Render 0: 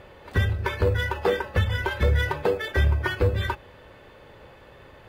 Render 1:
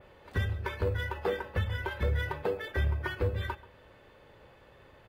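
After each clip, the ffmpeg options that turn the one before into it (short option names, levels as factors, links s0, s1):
-filter_complex "[0:a]adynamicequalizer=threshold=0.00251:dfrequency=6400:dqfactor=0.87:tfrequency=6400:tqfactor=0.87:attack=5:release=100:ratio=0.375:range=2.5:mode=cutabove:tftype=bell,asplit=2[s0][s1];[s1]adelay=134.1,volume=0.112,highshelf=f=4000:g=-3.02[s2];[s0][s2]amix=inputs=2:normalize=0,volume=0.398"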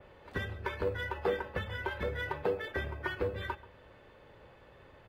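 -filter_complex "[0:a]highshelf=f=5200:g=-6.5,acrossover=split=180|2500[s0][s1][s2];[s0]acompressor=threshold=0.00891:ratio=6[s3];[s3][s1][s2]amix=inputs=3:normalize=0"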